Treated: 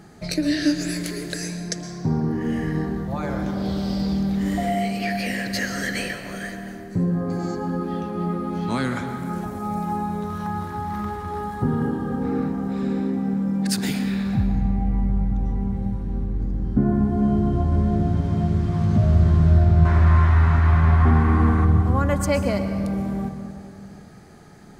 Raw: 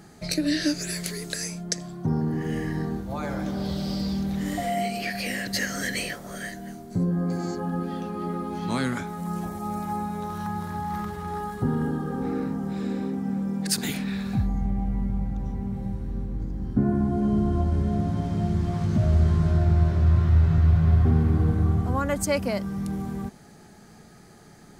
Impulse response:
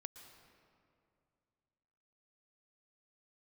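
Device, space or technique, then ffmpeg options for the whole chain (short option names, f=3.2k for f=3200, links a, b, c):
swimming-pool hall: -filter_complex "[0:a]asettb=1/sr,asplit=3[a][b][c];[a]atrim=end=19.854[d];[b]atrim=start=19.85:end=21.65,asetpts=PTS-STARTPTS,afade=t=in:d=0.004:c=qsin,afade=t=out:st=1.796:d=0.004:c=qsin,equalizer=f=125:t=o:w=1:g=-12,equalizer=f=250:t=o:w=1:g=5,equalizer=f=500:t=o:w=1:g=-4,equalizer=f=1k:t=o:w=1:g=12,equalizer=f=2k:t=o:w=1:g=10,equalizer=f=8k:t=o:w=1:g=5[e];[c]atrim=start=21.646[f];[d][e]acrossfade=d=0.004:c1=hsin:c2=qsin[g];[g][f]acrossfade=d=0.004:c1=qsin:c2=hsin[h];[1:a]atrim=start_sample=2205[i];[h][i]afir=irnorm=-1:irlink=0,highshelf=f=4.1k:g=-6,volume=8.5dB"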